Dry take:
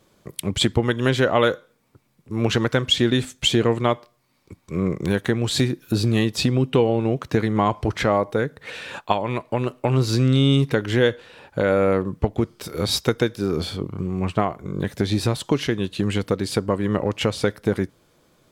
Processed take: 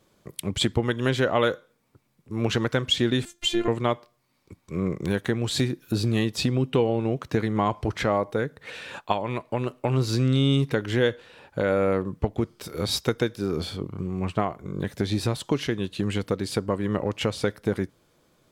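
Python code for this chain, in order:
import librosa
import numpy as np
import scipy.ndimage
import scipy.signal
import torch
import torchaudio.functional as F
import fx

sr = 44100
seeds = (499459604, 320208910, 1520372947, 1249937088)

y = fx.robotise(x, sr, hz=348.0, at=(3.25, 3.68))
y = y * 10.0 ** (-4.0 / 20.0)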